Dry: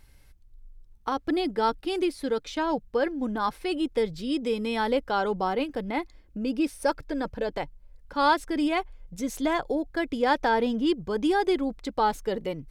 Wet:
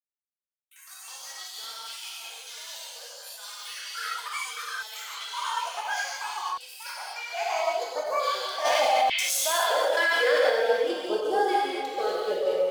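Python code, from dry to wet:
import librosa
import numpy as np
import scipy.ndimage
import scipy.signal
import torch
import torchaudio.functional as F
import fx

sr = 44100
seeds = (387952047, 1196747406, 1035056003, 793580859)

p1 = fx.low_shelf_res(x, sr, hz=360.0, db=-13.5, q=3.0)
p2 = fx.level_steps(p1, sr, step_db=14)
p3 = p1 + (p2 * 10.0 ** (2.0 / 20.0))
p4 = np.sign(p3) * np.maximum(np.abs(p3) - 10.0 ** (-37.5 / 20.0), 0.0)
p5 = fx.filter_sweep_highpass(p4, sr, from_hz=3200.0, to_hz=88.0, start_s=9.18, end_s=11.33, q=0.93)
p6 = fx.vibrato(p5, sr, rate_hz=3.8, depth_cents=11.0)
p7 = fx.filter_lfo_notch(p6, sr, shape='saw_up', hz=0.61, low_hz=500.0, high_hz=3000.0, q=0.75)
p8 = p7 + fx.echo_stepped(p7, sr, ms=213, hz=2600.0, octaves=-1.4, feedback_pct=70, wet_db=-5.0, dry=0)
p9 = fx.rev_gated(p8, sr, seeds[0], gate_ms=310, shape='flat', drr_db=-7.0)
p10 = fx.echo_pitch(p9, sr, ms=111, semitones=6, count=3, db_per_echo=-3.0)
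p11 = fx.env_flatten(p10, sr, amount_pct=70, at=(8.64, 10.49), fade=0.02)
y = p11 * 10.0 ** (-9.0 / 20.0)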